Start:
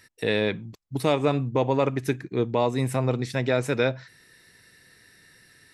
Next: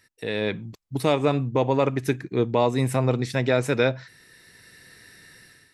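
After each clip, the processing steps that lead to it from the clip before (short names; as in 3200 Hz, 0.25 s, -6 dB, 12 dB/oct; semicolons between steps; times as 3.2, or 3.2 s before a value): AGC gain up to 11.5 dB; gain -6 dB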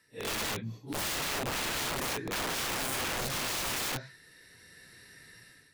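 phase scrambler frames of 0.2 s; wrapped overs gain 24.5 dB; gain -4 dB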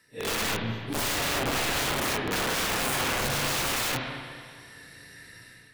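spring tank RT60 2 s, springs 31/35/42 ms, chirp 25 ms, DRR 2 dB; gain +4 dB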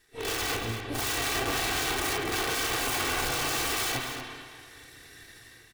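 minimum comb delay 2.6 ms; echo 0.237 s -9.5 dB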